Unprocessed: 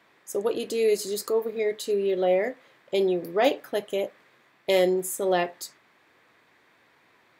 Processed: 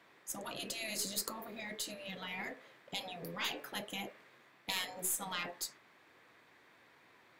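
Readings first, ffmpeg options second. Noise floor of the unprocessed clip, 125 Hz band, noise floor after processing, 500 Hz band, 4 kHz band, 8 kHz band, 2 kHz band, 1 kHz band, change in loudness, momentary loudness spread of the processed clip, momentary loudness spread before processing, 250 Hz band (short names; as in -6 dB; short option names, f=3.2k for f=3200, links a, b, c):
-62 dBFS, -11.0 dB, -65 dBFS, -25.5 dB, -4.0 dB, -2.5 dB, -7.0 dB, -13.0 dB, -13.5 dB, 9 LU, 9 LU, -17.5 dB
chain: -af "afftfilt=real='re*lt(hypot(re,im),0.1)':imag='im*lt(hypot(re,im),0.1)':win_size=1024:overlap=0.75,bandreject=f=215:t=h:w=4,bandreject=f=430:t=h:w=4,bandreject=f=645:t=h:w=4,bandreject=f=860:t=h:w=4,bandreject=f=1.075k:t=h:w=4,bandreject=f=1.29k:t=h:w=4,bandreject=f=1.505k:t=h:w=4,bandreject=f=1.72k:t=h:w=4,bandreject=f=1.935k:t=h:w=4,bandreject=f=2.15k:t=h:w=4,bandreject=f=2.365k:t=h:w=4,bandreject=f=2.58k:t=h:w=4,bandreject=f=2.795k:t=h:w=4,aeval=exprs='0.158*(cos(1*acos(clip(val(0)/0.158,-1,1)))-cos(1*PI/2))+0.0251*(cos(2*acos(clip(val(0)/0.158,-1,1)))-cos(2*PI/2))+0.02*(cos(4*acos(clip(val(0)/0.158,-1,1)))-cos(4*PI/2))':c=same,volume=-2.5dB"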